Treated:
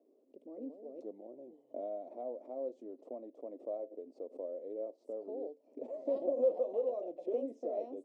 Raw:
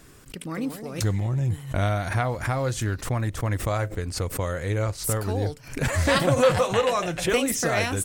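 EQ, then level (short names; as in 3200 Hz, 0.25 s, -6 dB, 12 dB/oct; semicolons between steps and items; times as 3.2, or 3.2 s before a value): elliptic band-pass 250–620 Hz, stop band 50 dB; air absorption 100 m; differentiator; +14.0 dB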